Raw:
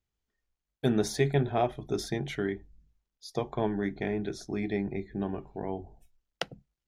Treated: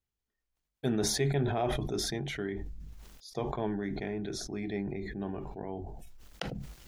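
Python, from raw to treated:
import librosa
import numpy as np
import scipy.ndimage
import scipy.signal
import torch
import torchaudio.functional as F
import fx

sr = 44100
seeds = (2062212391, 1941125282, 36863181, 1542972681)

y = fx.sustainer(x, sr, db_per_s=26.0)
y = y * 10.0 ** (-5.0 / 20.0)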